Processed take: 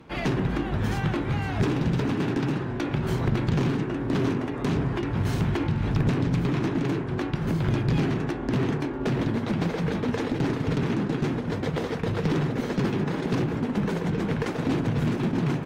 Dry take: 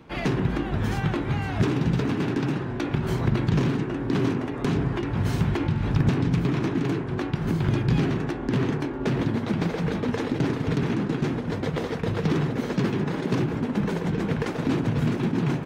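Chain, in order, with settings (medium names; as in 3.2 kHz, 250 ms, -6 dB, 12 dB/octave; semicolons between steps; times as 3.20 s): one-sided clip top -22 dBFS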